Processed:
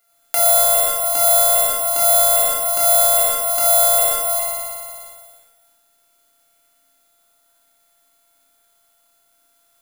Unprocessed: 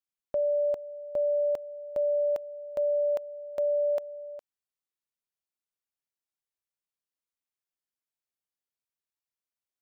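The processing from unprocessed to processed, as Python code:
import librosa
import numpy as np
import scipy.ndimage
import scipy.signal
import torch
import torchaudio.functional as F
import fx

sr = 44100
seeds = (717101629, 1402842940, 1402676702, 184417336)

y = np.r_[np.sort(x[:len(x) // 64 * 64].reshape(-1, 64), axis=1).ravel(), x[len(x) // 64 * 64:]]
y = scipy.signal.sosfilt(scipy.signal.butter(2, 330.0, 'highpass', fs=sr, output='sos'), y)
y = fx.room_flutter(y, sr, wall_m=5.0, rt60_s=1.3)
y = fx.transient(y, sr, attack_db=-8, sustain_db=5)
y = fx.doubler(y, sr, ms=21.0, db=-8.5)
y = fx.rev_fdn(y, sr, rt60_s=0.39, lf_ratio=1.45, hf_ratio=0.8, size_ms=20.0, drr_db=0.0)
y = (np.kron(y[::4], np.eye(4)[0]) * 4)[:len(y)]
y = fx.band_squash(y, sr, depth_pct=70)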